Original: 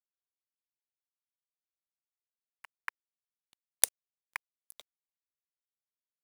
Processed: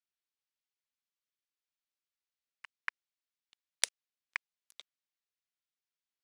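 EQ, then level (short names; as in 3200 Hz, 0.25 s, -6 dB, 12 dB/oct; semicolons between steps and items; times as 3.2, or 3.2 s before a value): air absorption 110 m; tilt shelf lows -7 dB, about 1100 Hz; bell 810 Hz -4 dB; 0.0 dB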